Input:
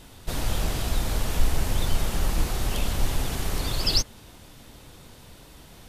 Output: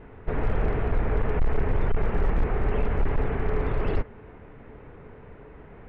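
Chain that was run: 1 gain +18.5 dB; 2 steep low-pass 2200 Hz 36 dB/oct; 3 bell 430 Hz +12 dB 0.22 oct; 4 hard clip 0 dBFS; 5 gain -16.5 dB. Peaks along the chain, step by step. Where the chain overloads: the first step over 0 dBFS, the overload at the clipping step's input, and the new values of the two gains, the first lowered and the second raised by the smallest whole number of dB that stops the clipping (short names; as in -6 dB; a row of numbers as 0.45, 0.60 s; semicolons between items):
+10.0, +9.5, +9.5, 0.0, -16.5 dBFS; step 1, 9.5 dB; step 1 +8.5 dB, step 5 -6.5 dB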